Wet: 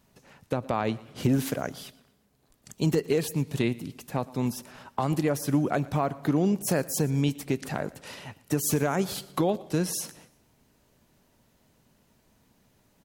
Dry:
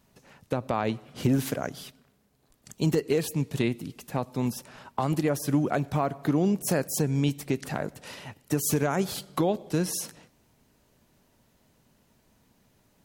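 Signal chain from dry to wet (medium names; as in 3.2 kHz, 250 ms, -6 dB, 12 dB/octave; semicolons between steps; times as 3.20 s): feedback delay 117 ms, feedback 38%, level -21.5 dB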